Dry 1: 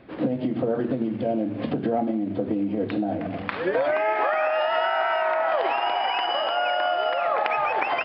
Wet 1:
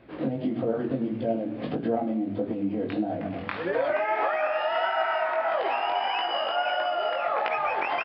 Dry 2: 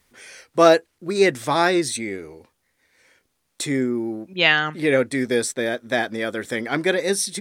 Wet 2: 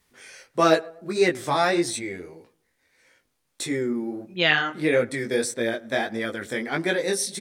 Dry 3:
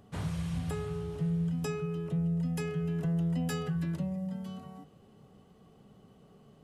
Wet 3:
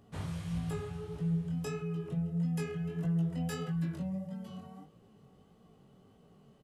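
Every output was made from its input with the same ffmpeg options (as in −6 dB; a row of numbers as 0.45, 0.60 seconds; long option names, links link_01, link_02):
-filter_complex "[0:a]asplit=2[link_01][link_02];[link_02]adelay=108,lowpass=frequency=1400:poles=1,volume=-20.5dB,asplit=2[link_03][link_04];[link_04]adelay=108,lowpass=frequency=1400:poles=1,volume=0.43,asplit=2[link_05][link_06];[link_06]adelay=108,lowpass=frequency=1400:poles=1,volume=0.43[link_07];[link_01][link_03][link_05][link_07]amix=inputs=4:normalize=0,flanger=delay=17:depth=5.6:speed=1.6"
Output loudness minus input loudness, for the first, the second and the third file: −3.0, −3.5, −2.5 LU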